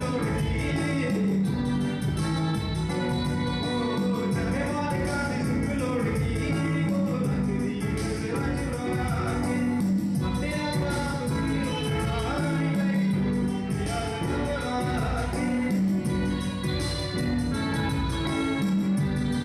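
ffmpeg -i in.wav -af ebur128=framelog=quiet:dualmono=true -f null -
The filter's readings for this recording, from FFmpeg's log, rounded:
Integrated loudness:
  I:         -24.0 LUFS
  Threshold: -34.0 LUFS
Loudness range:
  LRA:         0.6 LU
  Threshold: -44.1 LUFS
  LRA low:   -24.3 LUFS
  LRA high:  -23.8 LUFS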